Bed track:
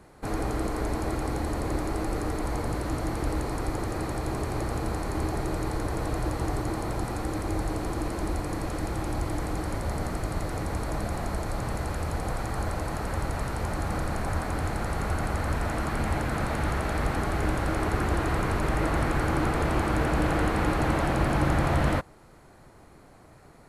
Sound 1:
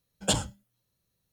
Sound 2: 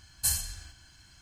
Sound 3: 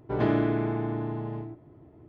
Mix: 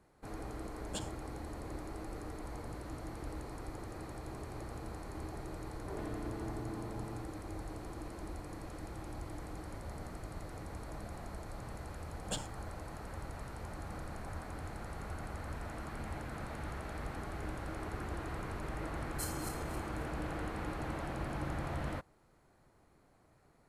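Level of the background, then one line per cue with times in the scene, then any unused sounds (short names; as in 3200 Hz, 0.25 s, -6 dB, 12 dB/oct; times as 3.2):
bed track -14.5 dB
0.66 add 1 -17 dB
5.78 add 3 -10.5 dB + compressor, threshold -29 dBFS
12.03 add 1 -13.5 dB + vocal rider
18.95 add 2 -16 dB + regenerating reverse delay 0.135 s, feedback 57%, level -4.5 dB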